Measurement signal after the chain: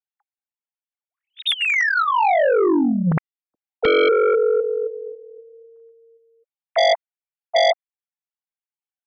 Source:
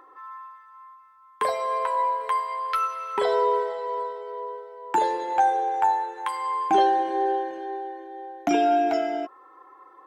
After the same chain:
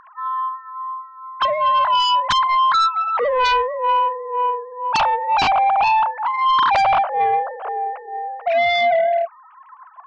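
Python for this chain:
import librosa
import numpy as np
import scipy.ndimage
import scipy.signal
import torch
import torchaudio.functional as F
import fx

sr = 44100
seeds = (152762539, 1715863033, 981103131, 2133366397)

p1 = fx.sine_speech(x, sr)
p2 = fx.dynamic_eq(p1, sr, hz=2000.0, q=4.0, threshold_db=-49.0, ratio=4.0, max_db=4)
p3 = fx.fold_sine(p2, sr, drive_db=16, ceiling_db=-7.0)
y = p2 + (p3 * 10.0 ** (-10.0 / 20.0))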